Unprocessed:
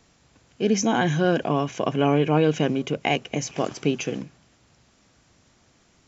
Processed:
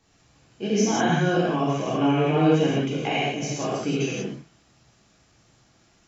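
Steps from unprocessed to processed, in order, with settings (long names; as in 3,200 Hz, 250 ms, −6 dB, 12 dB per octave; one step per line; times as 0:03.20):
reverb whose tail is shaped and stops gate 210 ms flat, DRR −8 dB
level −8.5 dB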